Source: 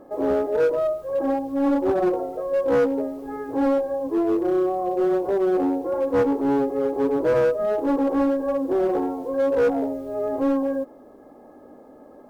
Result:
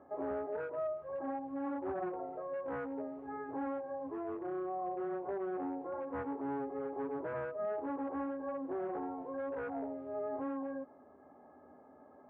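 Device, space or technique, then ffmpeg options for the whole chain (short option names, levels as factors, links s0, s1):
bass amplifier: -af "acompressor=threshold=0.0631:ratio=4,highpass=f=78:w=0.5412,highpass=f=78:w=1.3066,equalizer=f=79:t=q:w=4:g=6,equalizer=f=110:t=q:w=4:g=-9,equalizer=f=210:t=q:w=4:g=-7,equalizer=f=320:t=q:w=4:g=-9,equalizer=f=500:t=q:w=4:g=-10,lowpass=f=2100:w=0.5412,lowpass=f=2100:w=1.3066,volume=0.447"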